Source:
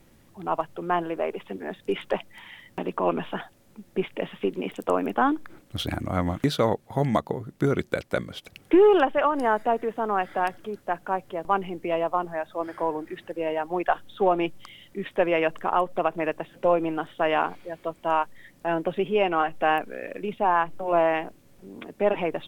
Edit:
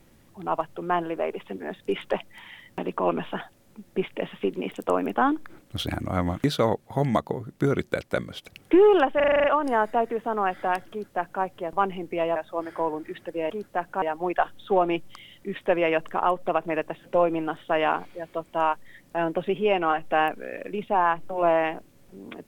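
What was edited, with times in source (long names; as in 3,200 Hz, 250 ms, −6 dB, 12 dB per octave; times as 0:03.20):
0:09.16: stutter 0.04 s, 8 plays
0:10.63–0:11.15: duplicate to 0:13.52
0:12.08–0:12.38: remove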